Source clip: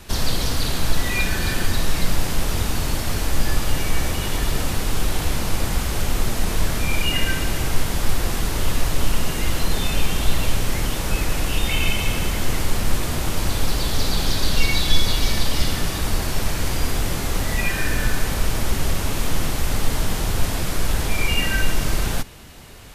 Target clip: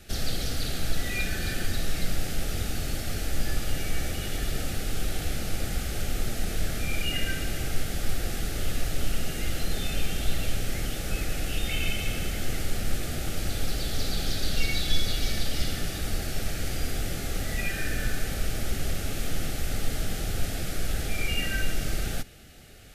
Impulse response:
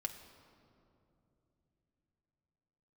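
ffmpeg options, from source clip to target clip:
-af "asuperstop=centerf=1000:order=4:qfactor=2.5,volume=-7.5dB"

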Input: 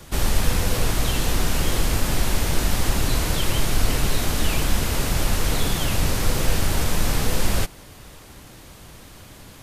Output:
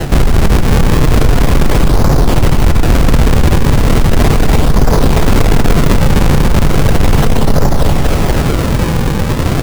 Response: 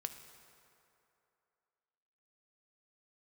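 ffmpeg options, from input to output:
-filter_complex "[0:a]lowpass=1100,areverse,acompressor=threshold=-27dB:ratio=6,areverse,aecho=1:1:240|480|720|960|1200|1440:0.668|0.314|0.148|0.0694|0.0326|0.0153,acrusher=samples=37:mix=1:aa=0.000001:lfo=1:lforange=59.2:lforate=0.36,asoftclip=type=tanh:threshold=-30dB[link_01];[1:a]atrim=start_sample=2205[link_02];[link_01][link_02]afir=irnorm=-1:irlink=0,alimiter=level_in=35dB:limit=-1dB:release=50:level=0:latency=1,volume=-1dB"

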